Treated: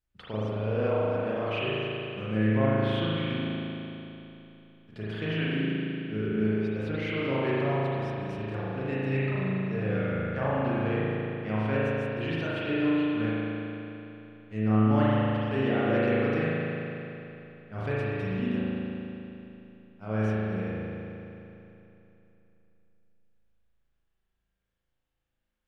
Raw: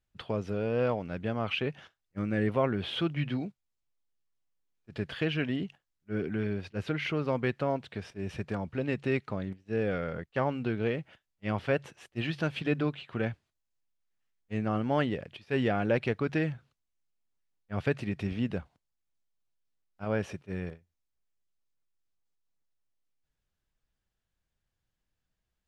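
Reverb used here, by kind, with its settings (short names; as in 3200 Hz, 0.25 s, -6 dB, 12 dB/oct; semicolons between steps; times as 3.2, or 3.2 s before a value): spring tank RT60 3.1 s, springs 37 ms, chirp 60 ms, DRR -9 dB; gain -6.5 dB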